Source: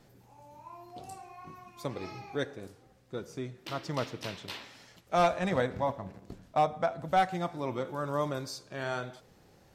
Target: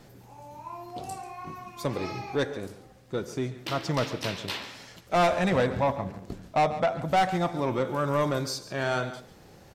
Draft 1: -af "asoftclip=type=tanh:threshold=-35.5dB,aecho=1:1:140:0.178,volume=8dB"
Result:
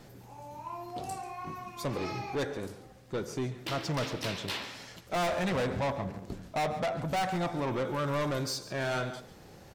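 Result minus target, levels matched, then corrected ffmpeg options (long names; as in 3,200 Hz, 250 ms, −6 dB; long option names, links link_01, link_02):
soft clipping: distortion +7 dB
-af "asoftclip=type=tanh:threshold=-26dB,aecho=1:1:140:0.178,volume=8dB"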